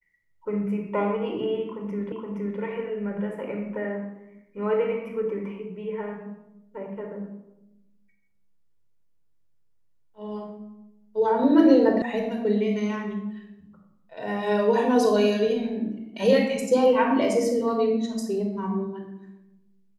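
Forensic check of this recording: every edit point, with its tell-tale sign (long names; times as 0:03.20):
0:02.12: the same again, the last 0.47 s
0:12.02: cut off before it has died away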